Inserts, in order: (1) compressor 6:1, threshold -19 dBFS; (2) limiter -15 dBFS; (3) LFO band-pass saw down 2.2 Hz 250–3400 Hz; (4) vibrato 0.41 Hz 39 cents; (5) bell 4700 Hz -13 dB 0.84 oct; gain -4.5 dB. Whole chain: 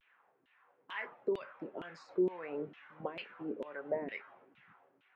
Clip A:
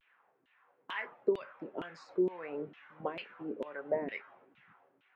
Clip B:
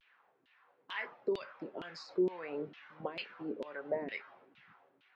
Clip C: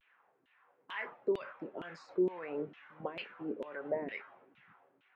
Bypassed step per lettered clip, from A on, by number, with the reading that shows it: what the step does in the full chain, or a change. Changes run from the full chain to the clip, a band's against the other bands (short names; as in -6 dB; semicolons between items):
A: 2, crest factor change +3.5 dB; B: 5, 4 kHz band +5.5 dB; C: 1, mean gain reduction 3.5 dB